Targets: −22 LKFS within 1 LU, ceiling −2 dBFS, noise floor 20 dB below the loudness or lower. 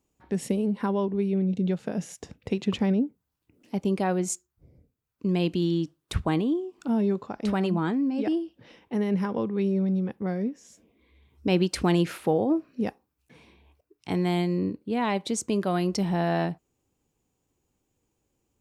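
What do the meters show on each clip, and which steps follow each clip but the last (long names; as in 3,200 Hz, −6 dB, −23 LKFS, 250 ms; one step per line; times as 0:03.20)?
integrated loudness −27.5 LKFS; sample peak −11.5 dBFS; target loudness −22.0 LKFS
→ level +5.5 dB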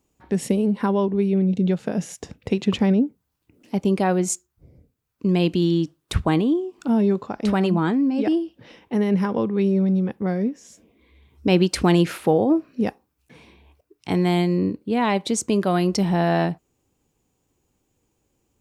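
integrated loudness −22.0 LKFS; sample peak −6.0 dBFS; background noise floor −74 dBFS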